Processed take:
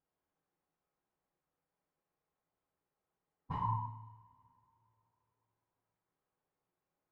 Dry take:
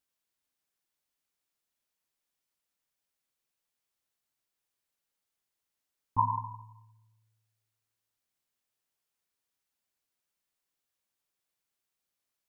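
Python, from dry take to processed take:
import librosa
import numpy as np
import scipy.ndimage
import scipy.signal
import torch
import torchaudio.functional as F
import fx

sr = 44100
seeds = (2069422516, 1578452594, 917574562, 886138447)

y = (np.mod(10.0 ** (17.5 / 20.0) * x + 1.0, 2.0) - 1.0) / 10.0 ** (17.5 / 20.0)
y = fx.stretch_vocoder_free(y, sr, factor=0.57)
y = scipy.signal.sosfilt(scipy.signal.butter(2, 1000.0, 'lowpass', fs=sr, output='sos'), y)
y = fx.over_compress(y, sr, threshold_db=-39.0, ratio=-0.5)
y = fx.rev_double_slope(y, sr, seeds[0], early_s=0.76, late_s=3.1, knee_db=-25, drr_db=-6.5)
y = F.gain(torch.from_numpy(y), 1.0).numpy()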